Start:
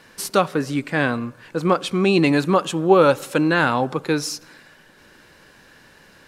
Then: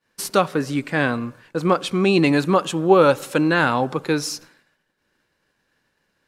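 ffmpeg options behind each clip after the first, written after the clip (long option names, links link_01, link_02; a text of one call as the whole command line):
ffmpeg -i in.wav -af "agate=range=-33dB:threshold=-37dB:ratio=3:detection=peak" out.wav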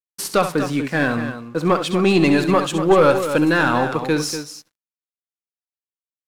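ffmpeg -i in.wav -af "aeval=exprs='sgn(val(0))*max(abs(val(0))-0.00531,0)':channel_layout=same,aeval=exprs='(tanh(2.51*val(0)+0.15)-tanh(0.15))/2.51':channel_layout=same,aecho=1:1:67.06|242:0.316|0.316,volume=2.5dB" out.wav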